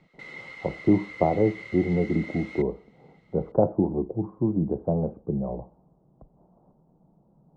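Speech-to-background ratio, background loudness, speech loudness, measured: 14.0 dB, -40.5 LUFS, -26.5 LUFS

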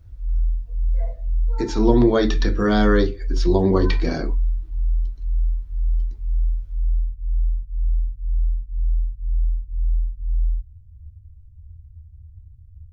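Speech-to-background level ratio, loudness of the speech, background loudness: 6.0 dB, -20.5 LUFS, -26.5 LUFS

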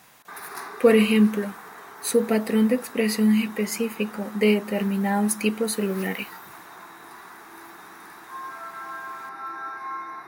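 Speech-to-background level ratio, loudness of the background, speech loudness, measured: 16.5 dB, -39.5 LUFS, -23.0 LUFS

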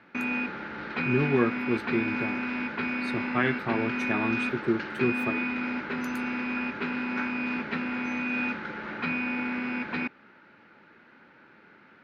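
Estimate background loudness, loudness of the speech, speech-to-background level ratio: -30.5 LUFS, -30.5 LUFS, 0.0 dB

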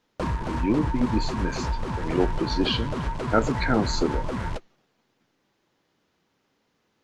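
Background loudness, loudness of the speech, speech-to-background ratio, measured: -30.5 LUFS, -27.0 LUFS, 3.5 dB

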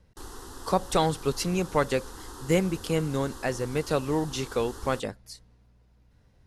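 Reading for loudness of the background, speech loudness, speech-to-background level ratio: -44.0 LUFS, -28.0 LUFS, 16.0 dB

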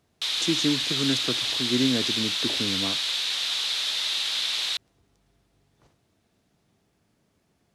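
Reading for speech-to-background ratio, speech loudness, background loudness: -5.0 dB, -29.5 LUFS, -24.5 LUFS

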